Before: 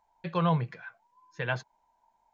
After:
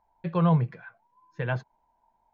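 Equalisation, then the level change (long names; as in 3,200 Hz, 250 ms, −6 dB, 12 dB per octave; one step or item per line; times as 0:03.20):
low-pass filter 1,900 Hz 6 dB per octave
low-shelf EQ 410 Hz +6.5 dB
0.0 dB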